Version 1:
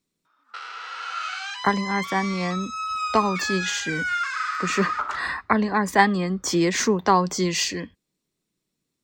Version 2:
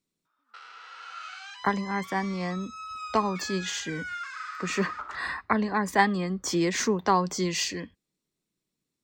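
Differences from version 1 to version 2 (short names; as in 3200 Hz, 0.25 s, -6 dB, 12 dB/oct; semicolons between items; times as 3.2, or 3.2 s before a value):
speech -4.5 dB; background -10.5 dB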